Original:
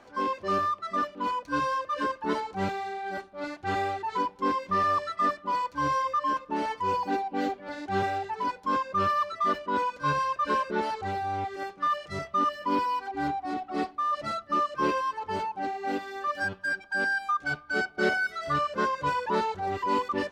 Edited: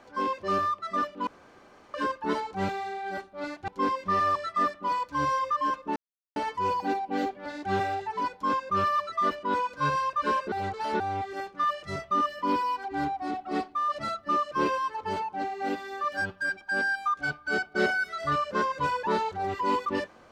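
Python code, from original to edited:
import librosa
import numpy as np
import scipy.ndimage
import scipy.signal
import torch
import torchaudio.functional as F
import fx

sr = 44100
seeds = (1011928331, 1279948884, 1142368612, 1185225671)

y = fx.edit(x, sr, fx.room_tone_fill(start_s=1.27, length_s=0.67),
    fx.cut(start_s=3.68, length_s=0.63),
    fx.insert_silence(at_s=6.59, length_s=0.4),
    fx.reverse_span(start_s=10.75, length_s=0.48), tone=tone)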